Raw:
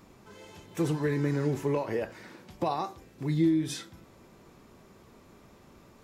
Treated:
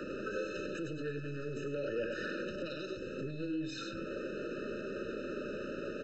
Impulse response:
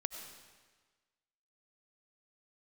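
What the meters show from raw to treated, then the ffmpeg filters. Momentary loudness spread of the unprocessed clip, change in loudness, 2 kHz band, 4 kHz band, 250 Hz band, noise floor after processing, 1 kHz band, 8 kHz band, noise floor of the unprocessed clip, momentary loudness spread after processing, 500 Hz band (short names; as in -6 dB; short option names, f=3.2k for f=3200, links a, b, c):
23 LU, -9.0 dB, +1.5 dB, -2.5 dB, -9.0 dB, -43 dBFS, -11.5 dB, -10.5 dB, -56 dBFS, 4 LU, -3.5 dB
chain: -filter_complex "[0:a]aresample=16000,aeval=exprs='0.168*sin(PI/2*2.51*val(0)/0.168)':c=same,aresample=44100,equalizer=f=270:w=0.35:g=4,acrossover=split=180|3000[a][b][c];[b]acompressor=threshold=-39dB:ratio=2[d];[a][d][c]amix=inputs=3:normalize=0,acrossover=split=200|1700[e][f][g];[e]aeval=exprs='max(val(0),0)':c=same[h];[f]bandreject=f=60:t=h:w=6,bandreject=f=120:t=h:w=6,bandreject=f=180:t=h:w=6,bandreject=f=240:t=h:w=6,bandreject=f=300:t=h:w=6,bandreject=f=360:t=h:w=6,bandreject=f=420:t=h:w=6[i];[h][i][g]amix=inputs=3:normalize=0,acompressor=threshold=-38dB:ratio=2,aecho=1:1:97:0.398,alimiter=level_in=8dB:limit=-24dB:level=0:latency=1:release=42,volume=-8dB,bass=f=250:g=-14,treble=f=4k:g=-14,aeval=exprs='val(0)+0.000631*sin(2*PI*2600*n/s)':c=same,afftfilt=real='re*eq(mod(floor(b*sr/1024/610),2),0)':imag='im*eq(mod(floor(b*sr/1024/610),2),0)':win_size=1024:overlap=0.75,volume=8dB"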